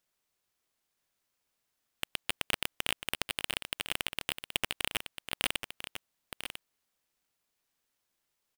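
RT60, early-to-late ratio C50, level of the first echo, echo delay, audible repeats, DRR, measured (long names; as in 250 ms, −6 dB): no reverb audible, no reverb audible, −9.0 dB, 996 ms, 1, no reverb audible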